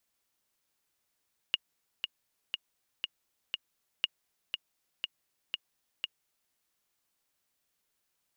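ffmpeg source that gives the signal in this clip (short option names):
-f lavfi -i "aevalsrc='pow(10,(-13.5-6*gte(mod(t,5*60/120),60/120))/20)*sin(2*PI*2860*mod(t,60/120))*exp(-6.91*mod(t,60/120)/0.03)':d=5:s=44100"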